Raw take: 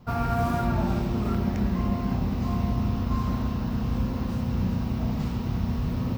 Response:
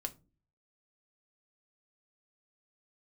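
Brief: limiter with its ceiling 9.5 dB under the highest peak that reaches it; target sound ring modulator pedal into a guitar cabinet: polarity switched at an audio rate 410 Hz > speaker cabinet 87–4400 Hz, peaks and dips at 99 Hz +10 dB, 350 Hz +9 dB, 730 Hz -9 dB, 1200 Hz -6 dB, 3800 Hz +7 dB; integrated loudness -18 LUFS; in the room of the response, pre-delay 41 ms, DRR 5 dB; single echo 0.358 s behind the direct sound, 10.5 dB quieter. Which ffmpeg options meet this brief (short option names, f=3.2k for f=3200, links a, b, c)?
-filter_complex "[0:a]alimiter=limit=-23dB:level=0:latency=1,aecho=1:1:358:0.299,asplit=2[a][b];[1:a]atrim=start_sample=2205,adelay=41[c];[b][c]afir=irnorm=-1:irlink=0,volume=-4dB[d];[a][d]amix=inputs=2:normalize=0,aeval=exprs='val(0)*sgn(sin(2*PI*410*n/s))':c=same,highpass=87,equalizer=f=99:t=q:w=4:g=10,equalizer=f=350:t=q:w=4:g=9,equalizer=f=730:t=q:w=4:g=-9,equalizer=f=1.2k:t=q:w=4:g=-6,equalizer=f=3.8k:t=q:w=4:g=7,lowpass=f=4.4k:w=0.5412,lowpass=f=4.4k:w=1.3066,volume=8dB"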